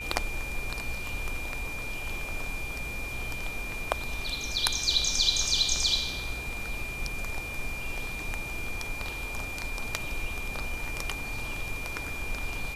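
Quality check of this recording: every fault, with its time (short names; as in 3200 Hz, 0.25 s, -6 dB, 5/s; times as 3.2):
tone 2400 Hz -36 dBFS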